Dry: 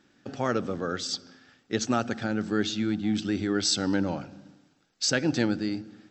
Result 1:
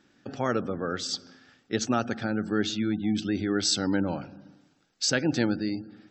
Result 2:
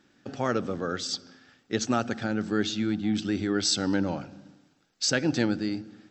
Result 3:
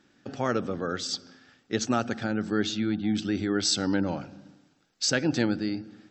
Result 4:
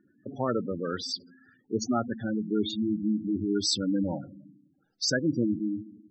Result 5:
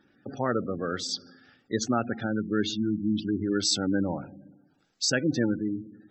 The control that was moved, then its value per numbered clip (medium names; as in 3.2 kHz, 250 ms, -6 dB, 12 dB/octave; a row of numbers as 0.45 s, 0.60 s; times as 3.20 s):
spectral gate, under each frame's peak: -35 dB, -60 dB, -45 dB, -10 dB, -20 dB